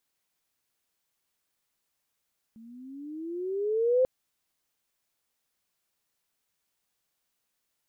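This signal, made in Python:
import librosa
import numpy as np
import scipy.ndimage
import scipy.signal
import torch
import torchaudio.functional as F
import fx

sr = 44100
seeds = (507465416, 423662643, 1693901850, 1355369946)

y = fx.riser_tone(sr, length_s=1.49, level_db=-18.5, wave='sine', hz=220.0, rise_st=15.0, swell_db=28.0)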